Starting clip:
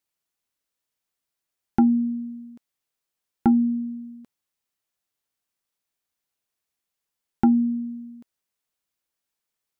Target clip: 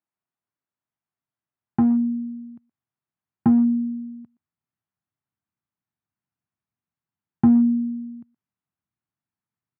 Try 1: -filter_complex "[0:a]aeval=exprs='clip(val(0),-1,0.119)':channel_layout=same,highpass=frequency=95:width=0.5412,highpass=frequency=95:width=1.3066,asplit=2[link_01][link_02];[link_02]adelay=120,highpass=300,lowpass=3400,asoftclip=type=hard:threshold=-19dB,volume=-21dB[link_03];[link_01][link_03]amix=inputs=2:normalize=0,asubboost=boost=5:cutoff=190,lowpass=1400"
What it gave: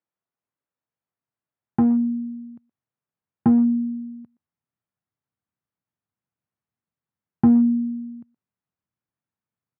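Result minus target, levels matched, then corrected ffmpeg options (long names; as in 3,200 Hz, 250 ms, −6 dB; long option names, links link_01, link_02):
500 Hz band +4.0 dB
-filter_complex "[0:a]aeval=exprs='clip(val(0),-1,0.119)':channel_layout=same,highpass=frequency=95:width=0.5412,highpass=frequency=95:width=1.3066,asplit=2[link_01][link_02];[link_02]adelay=120,highpass=300,lowpass=3400,asoftclip=type=hard:threshold=-19dB,volume=-21dB[link_03];[link_01][link_03]amix=inputs=2:normalize=0,asubboost=boost=5:cutoff=190,lowpass=1400,equalizer=frequency=500:width=4.9:gain=-12"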